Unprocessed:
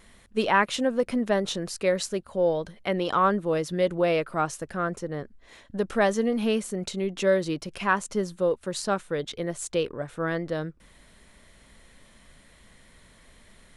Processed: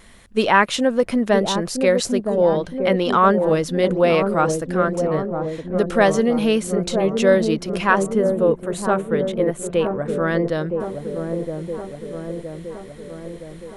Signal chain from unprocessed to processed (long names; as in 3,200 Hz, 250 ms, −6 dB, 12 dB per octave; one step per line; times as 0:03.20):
0:08.03–0:10.06: parametric band 5,000 Hz −14.5 dB 0.97 octaves
delay with a low-pass on its return 967 ms, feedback 60%, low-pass 680 Hz, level −4 dB
level +6.5 dB